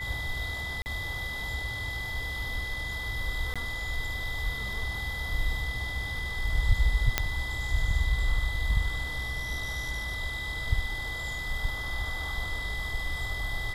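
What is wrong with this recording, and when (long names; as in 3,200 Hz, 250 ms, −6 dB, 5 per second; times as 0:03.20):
whistle 2,000 Hz −34 dBFS
0:00.82–0:00.86: drop-out 39 ms
0:03.54–0:03.56: drop-out 16 ms
0:07.18: click −6 dBFS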